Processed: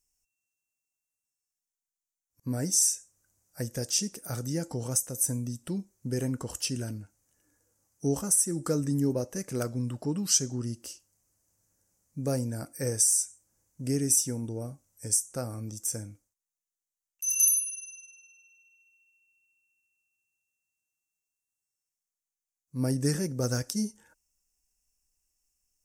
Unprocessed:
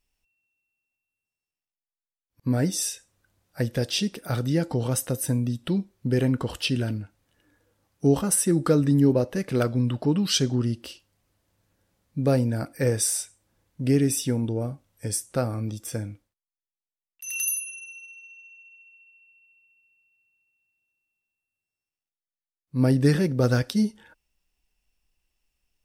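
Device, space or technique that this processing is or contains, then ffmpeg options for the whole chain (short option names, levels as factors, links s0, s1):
over-bright horn tweeter: -af "highshelf=f=4900:t=q:w=3:g=10.5,alimiter=limit=0.668:level=0:latency=1:release=366,volume=0.398"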